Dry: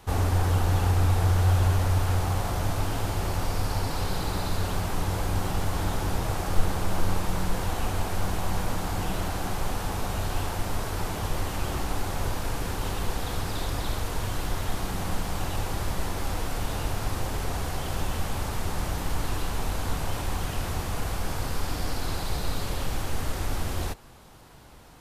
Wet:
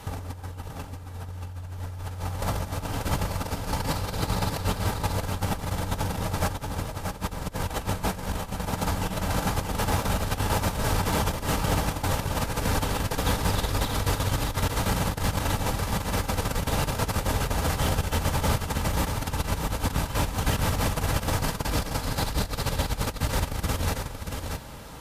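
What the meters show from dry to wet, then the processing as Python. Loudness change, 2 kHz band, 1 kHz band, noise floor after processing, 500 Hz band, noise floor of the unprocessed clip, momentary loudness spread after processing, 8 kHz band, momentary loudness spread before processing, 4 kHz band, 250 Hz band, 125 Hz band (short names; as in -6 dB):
+1.5 dB, +3.0 dB, +2.5 dB, -39 dBFS, +2.5 dB, -33 dBFS, 9 LU, +3.5 dB, 8 LU, +3.0 dB, +3.0 dB, -0.5 dB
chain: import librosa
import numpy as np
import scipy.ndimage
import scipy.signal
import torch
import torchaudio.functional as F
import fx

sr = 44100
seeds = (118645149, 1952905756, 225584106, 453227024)

p1 = fx.over_compress(x, sr, threshold_db=-30.0, ratio=-0.5)
p2 = fx.notch_comb(p1, sr, f0_hz=360.0)
p3 = fx.clip_asym(p2, sr, top_db=-21.5, bottom_db=-20.5)
p4 = p3 + fx.echo_single(p3, sr, ms=631, db=-5.5, dry=0)
y = p4 * librosa.db_to_amplitude(4.5)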